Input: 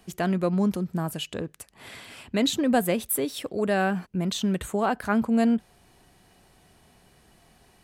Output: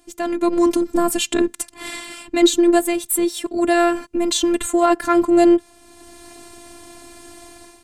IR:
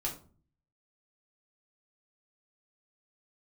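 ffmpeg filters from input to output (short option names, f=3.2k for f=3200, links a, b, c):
-af "equalizer=f=125:t=o:w=1:g=8,equalizer=f=250:t=o:w=1:g=11,equalizer=f=1k:t=o:w=1:g=5,equalizer=f=2k:t=o:w=1:g=3,equalizer=f=4k:t=o:w=1:g=3,equalizer=f=8k:t=o:w=1:g=11,aeval=exprs='0.708*(cos(1*acos(clip(val(0)/0.708,-1,1)))-cos(1*PI/2))+0.00708*(cos(6*acos(clip(val(0)/0.708,-1,1)))-cos(6*PI/2))+0.01*(cos(7*acos(clip(val(0)/0.708,-1,1)))-cos(7*PI/2))':c=same,afftfilt=real='hypot(re,im)*cos(PI*b)':imag='0':win_size=512:overlap=0.75,dynaudnorm=f=170:g=5:m=16dB,volume=-1dB"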